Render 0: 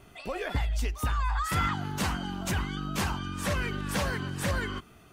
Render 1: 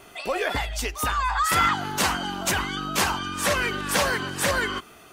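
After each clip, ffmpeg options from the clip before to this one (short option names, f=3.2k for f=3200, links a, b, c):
-af "bass=f=250:g=-13,treble=f=4k:g=2,volume=9dB"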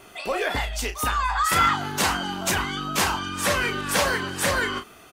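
-filter_complex "[0:a]asplit=2[a][b];[b]adelay=33,volume=-8.5dB[c];[a][c]amix=inputs=2:normalize=0"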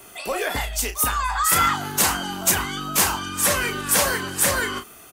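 -filter_complex "[0:a]acrossover=split=160|560|5100[a][b][c][d];[d]crystalizer=i=2:c=0[e];[a][b][c][e]amix=inputs=4:normalize=0,aeval=exprs='0.668*(cos(1*acos(clip(val(0)/0.668,-1,1)))-cos(1*PI/2))+0.00422*(cos(4*acos(clip(val(0)/0.668,-1,1)))-cos(4*PI/2))':c=same"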